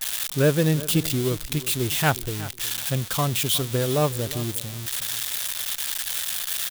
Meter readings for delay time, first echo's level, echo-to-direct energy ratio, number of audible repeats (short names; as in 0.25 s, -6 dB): 0.364 s, -16.5 dB, -16.5 dB, 2